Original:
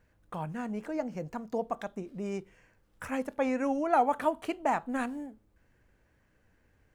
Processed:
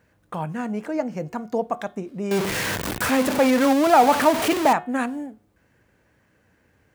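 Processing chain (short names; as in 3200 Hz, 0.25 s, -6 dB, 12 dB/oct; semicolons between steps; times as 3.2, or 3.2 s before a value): 2.31–4.73 zero-crossing step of -27 dBFS; HPF 93 Hz 12 dB/oct; de-hum 361.2 Hz, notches 10; gain +8 dB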